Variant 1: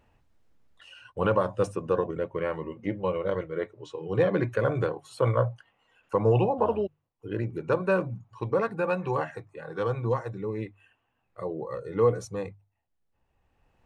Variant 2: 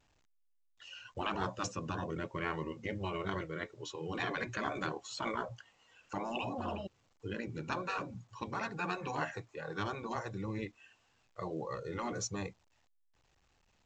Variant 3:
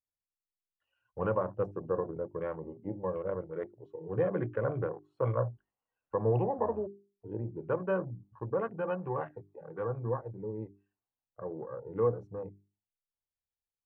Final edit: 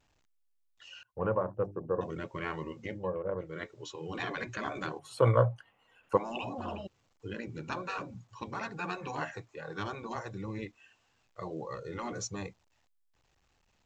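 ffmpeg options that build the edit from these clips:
-filter_complex "[2:a]asplit=2[a][b];[1:a]asplit=4[c][d][e][f];[c]atrim=end=1.032[g];[a]atrim=start=1.028:end=2.012[h];[d]atrim=start=2.008:end=3.09[i];[b]atrim=start=2.85:end=3.6[j];[e]atrim=start=3.36:end=4.992[k];[0:a]atrim=start=4.988:end=6.172[l];[f]atrim=start=6.168[m];[g][h]acrossfade=d=0.004:c1=hsin:c2=hsin[n];[n][i]acrossfade=d=0.004:c1=hsin:c2=hsin[o];[o][j]acrossfade=d=0.24:c1=tri:c2=tri[p];[p][k]acrossfade=d=0.24:c1=tri:c2=tri[q];[q][l]acrossfade=d=0.004:c1=hsin:c2=hsin[r];[r][m]acrossfade=d=0.004:c1=hsin:c2=hsin"

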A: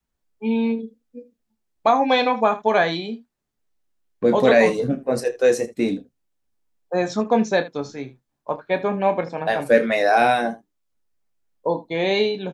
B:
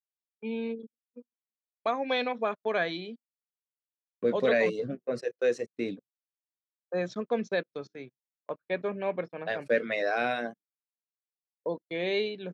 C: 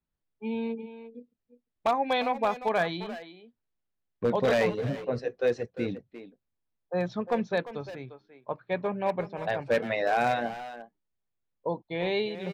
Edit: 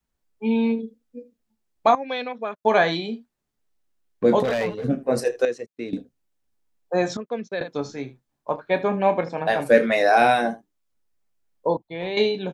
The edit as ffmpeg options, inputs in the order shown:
-filter_complex "[1:a]asplit=3[a][b][c];[2:a]asplit=2[d][e];[0:a]asplit=6[f][g][h][i][j][k];[f]atrim=end=1.952[l];[a]atrim=start=1.948:end=2.652[m];[g]atrim=start=2.648:end=4.432[n];[d]atrim=start=4.428:end=4.842[o];[h]atrim=start=4.838:end=5.452[p];[b]atrim=start=5.448:end=5.932[q];[i]atrim=start=5.928:end=7.172[r];[c]atrim=start=7.168:end=7.612[s];[j]atrim=start=7.608:end=11.772[t];[e]atrim=start=11.768:end=12.172[u];[k]atrim=start=12.168[v];[l][m]acrossfade=d=0.004:c1=hsin:c2=hsin[w];[w][n]acrossfade=d=0.004:c1=hsin:c2=hsin[x];[x][o]acrossfade=d=0.004:c1=hsin:c2=hsin[y];[y][p]acrossfade=d=0.004:c1=hsin:c2=hsin[z];[z][q]acrossfade=d=0.004:c1=hsin:c2=hsin[aa];[aa][r]acrossfade=d=0.004:c1=hsin:c2=hsin[ab];[ab][s]acrossfade=d=0.004:c1=hsin:c2=hsin[ac];[ac][t]acrossfade=d=0.004:c1=hsin:c2=hsin[ad];[ad][u]acrossfade=d=0.004:c1=hsin:c2=hsin[ae];[ae][v]acrossfade=d=0.004:c1=hsin:c2=hsin"

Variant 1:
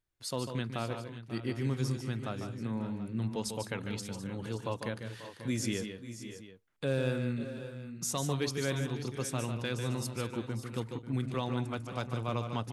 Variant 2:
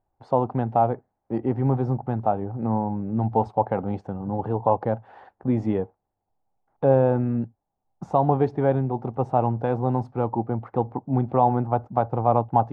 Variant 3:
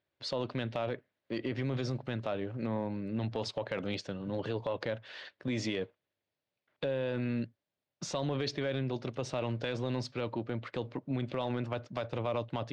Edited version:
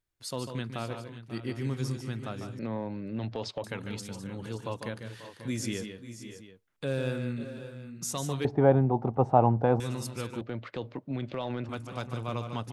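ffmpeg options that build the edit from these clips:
-filter_complex "[2:a]asplit=2[a][b];[0:a]asplit=4[c][d][e][f];[c]atrim=end=2.592[g];[a]atrim=start=2.588:end=3.642[h];[d]atrim=start=3.638:end=8.452[i];[1:a]atrim=start=8.448:end=9.802[j];[e]atrim=start=9.798:end=10.412[k];[b]atrim=start=10.408:end=11.692[l];[f]atrim=start=11.688[m];[g][h]acrossfade=d=0.004:c1=hsin:c2=hsin[n];[n][i]acrossfade=d=0.004:c1=hsin:c2=hsin[o];[o][j]acrossfade=d=0.004:c1=hsin:c2=hsin[p];[p][k]acrossfade=d=0.004:c1=hsin:c2=hsin[q];[q][l]acrossfade=d=0.004:c1=hsin:c2=hsin[r];[r][m]acrossfade=d=0.004:c1=hsin:c2=hsin"

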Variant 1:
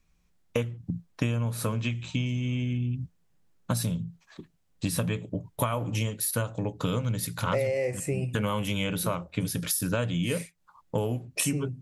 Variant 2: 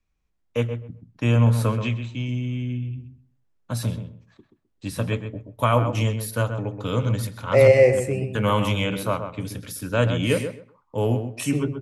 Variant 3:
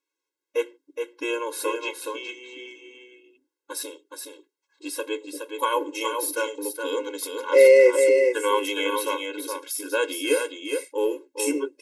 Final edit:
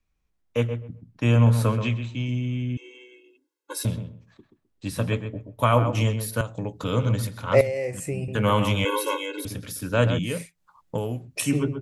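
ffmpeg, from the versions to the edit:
-filter_complex "[2:a]asplit=2[a][b];[0:a]asplit=3[c][d][e];[1:a]asplit=6[f][g][h][i][j][k];[f]atrim=end=2.772[l];[a]atrim=start=2.768:end=3.852[m];[g]atrim=start=3.848:end=6.412[n];[c]atrim=start=6.408:end=6.842[o];[h]atrim=start=6.838:end=7.612[p];[d]atrim=start=7.608:end=8.282[q];[i]atrim=start=8.278:end=8.852[r];[b]atrim=start=8.848:end=9.452[s];[j]atrim=start=9.448:end=10.192[t];[e]atrim=start=10.188:end=11.422[u];[k]atrim=start=11.418[v];[l][m]acrossfade=d=0.004:c1=hsin:c2=hsin[w];[w][n]acrossfade=d=0.004:c1=hsin:c2=hsin[x];[x][o]acrossfade=d=0.004:c1=hsin:c2=hsin[y];[y][p]acrossfade=d=0.004:c1=hsin:c2=hsin[z];[z][q]acrossfade=d=0.004:c1=hsin:c2=hsin[aa];[aa][r]acrossfade=d=0.004:c1=hsin:c2=hsin[ab];[ab][s]acrossfade=d=0.004:c1=hsin:c2=hsin[ac];[ac][t]acrossfade=d=0.004:c1=hsin:c2=hsin[ad];[ad][u]acrossfade=d=0.004:c1=hsin:c2=hsin[ae];[ae][v]acrossfade=d=0.004:c1=hsin:c2=hsin"

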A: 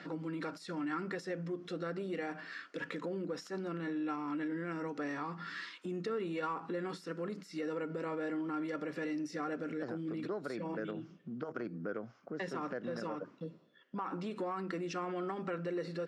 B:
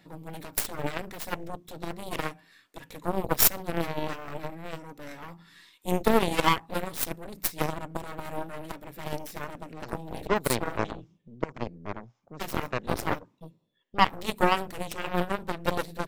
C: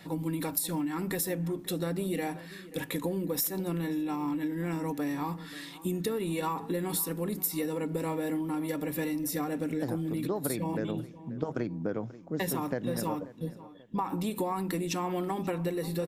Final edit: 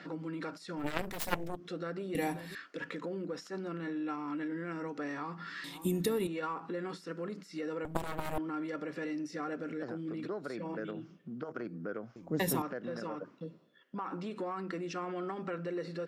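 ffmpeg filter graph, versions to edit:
-filter_complex "[1:a]asplit=2[a][b];[2:a]asplit=3[c][d][e];[0:a]asplit=6[f][g][h][i][j][k];[f]atrim=end=1[l];[a]atrim=start=0.76:end=1.67[m];[g]atrim=start=1.43:end=2.152[n];[c]atrim=start=2.148:end=2.552[o];[h]atrim=start=2.548:end=5.642[p];[d]atrim=start=5.638:end=6.272[q];[i]atrim=start=6.268:end=7.852[r];[b]atrim=start=7.848:end=8.382[s];[j]atrim=start=8.378:end=12.162[t];[e]atrim=start=12.158:end=12.622[u];[k]atrim=start=12.618[v];[l][m]acrossfade=d=0.24:c1=tri:c2=tri[w];[w][n]acrossfade=d=0.24:c1=tri:c2=tri[x];[x][o]acrossfade=d=0.004:c1=hsin:c2=hsin[y];[y][p]acrossfade=d=0.004:c1=hsin:c2=hsin[z];[z][q]acrossfade=d=0.004:c1=hsin:c2=hsin[aa];[aa][r]acrossfade=d=0.004:c1=hsin:c2=hsin[ab];[ab][s]acrossfade=d=0.004:c1=hsin:c2=hsin[ac];[ac][t]acrossfade=d=0.004:c1=hsin:c2=hsin[ad];[ad][u]acrossfade=d=0.004:c1=hsin:c2=hsin[ae];[ae][v]acrossfade=d=0.004:c1=hsin:c2=hsin"

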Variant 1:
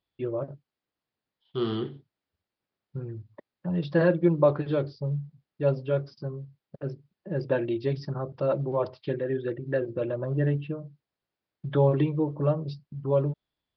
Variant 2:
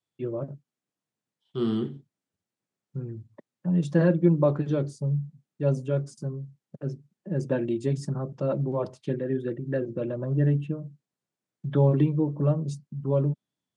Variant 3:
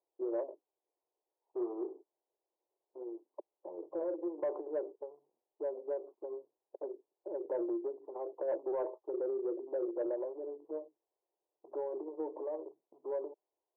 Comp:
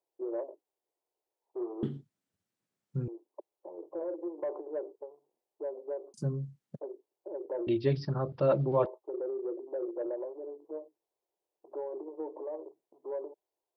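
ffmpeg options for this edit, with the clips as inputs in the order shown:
-filter_complex "[1:a]asplit=2[a][b];[2:a]asplit=4[c][d][e][f];[c]atrim=end=1.832[g];[a]atrim=start=1.828:end=3.082[h];[d]atrim=start=3.078:end=6.142[i];[b]atrim=start=6.138:end=6.792[j];[e]atrim=start=6.788:end=7.672[k];[0:a]atrim=start=7.668:end=8.862[l];[f]atrim=start=8.858[m];[g][h]acrossfade=d=0.004:c1=hsin:c2=hsin[n];[n][i]acrossfade=d=0.004:c1=hsin:c2=hsin[o];[o][j]acrossfade=d=0.004:c1=hsin:c2=hsin[p];[p][k]acrossfade=d=0.004:c1=hsin:c2=hsin[q];[q][l]acrossfade=d=0.004:c1=hsin:c2=hsin[r];[r][m]acrossfade=d=0.004:c1=hsin:c2=hsin"

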